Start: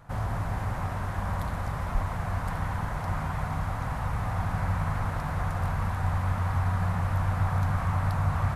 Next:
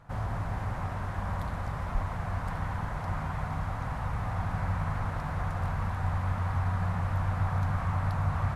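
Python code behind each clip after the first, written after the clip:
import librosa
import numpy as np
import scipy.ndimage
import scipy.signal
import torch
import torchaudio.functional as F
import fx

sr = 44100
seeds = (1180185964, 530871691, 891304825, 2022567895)

y = fx.high_shelf(x, sr, hz=9300.0, db=-10.0)
y = y * librosa.db_to_amplitude(-2.5)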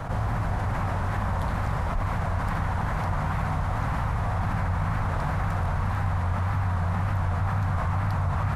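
y = fx.wow_flutter(x, sr, seeds[0], rate_hz=2.1, depth_cents=84.0)
y = fx.env_flatten(y, sr, amount_pct=70)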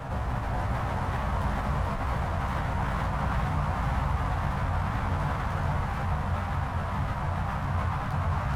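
y = fx.doubler(x, sr, ms=15.0, db=-2.5)
y = y + 10.0 ** (-4.0 / 20.0) * np.pad(y, (int(433 * sr / 1000.0), 0))[:len(y)]
y = fx.running_max(y, sr, window=5)
y = y * librosa.db_to_amplitude(-4.0)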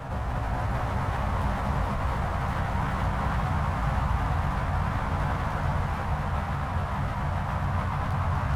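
y = x + 10.0 ** (-5.5 / 20.0) * np.pad(x, (int(248 * sr / 1000.0), 0))[:len(x)]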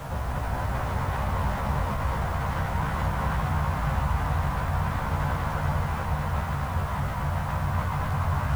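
y = fx.quant_dither(x, sr, seeds[1], bits=8, dither='none')
y = fx.doubler(y, sr, ms=13.0, db=-11.0)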